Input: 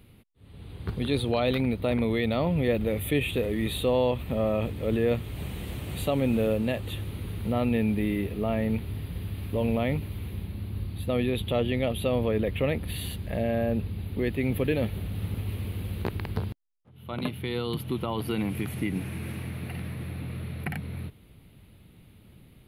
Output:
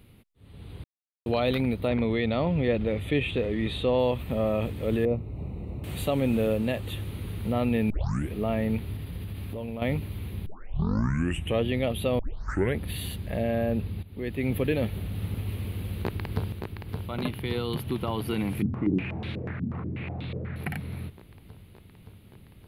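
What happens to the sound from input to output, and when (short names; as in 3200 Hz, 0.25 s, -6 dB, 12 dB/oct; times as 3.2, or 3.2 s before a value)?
0.84–1.26 mute
1.88–3.99 LPF 4900 Hz
5.05–5.84 running mean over 27 samples
7.9 tape start 0.43 s
8.95–9.82 compressor, threshold -31 dBFS
10.46 tape start 1.17 s
12.19 tape start 0.59 s
14.03–14.49 fade in linear, from -16 dB
15.74–16.49 echo throw 0.57 s, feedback 80%, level -5.5 dB
18.62–20.56 stepped low-pass 8.2 Hz 230–3700 Hz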